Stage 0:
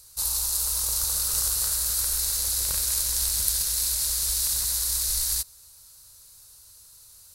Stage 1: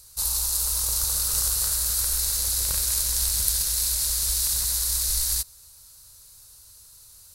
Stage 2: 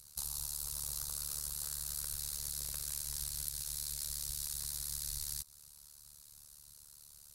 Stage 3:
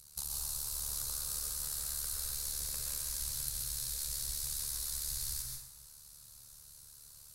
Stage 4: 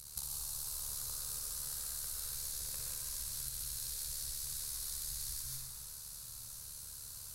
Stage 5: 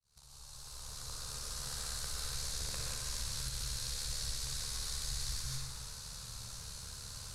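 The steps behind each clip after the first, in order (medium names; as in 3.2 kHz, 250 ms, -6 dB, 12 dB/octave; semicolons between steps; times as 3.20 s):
bass shelf 130 Hz +4 dB; trim +1 dB
compression 10:1, threshold -29 dBFS, peak gain reduction 12.5 dB; AM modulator 73 Hz, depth 95%; trim -3.5 dB
plate-style reverb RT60 0.96 s, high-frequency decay 0.65×, pre-delay 110 ms, DRR 0 dB
compression 6:1, threshold -45 dBFS, peak gain reduction 12.5 dB; on a send: flutter echo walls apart 10.4 m, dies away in 0.5 s; on the sum: trim +6 dB
fade-in on the opening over 1.88 s; distance through air 86 m; trim +9.5 dB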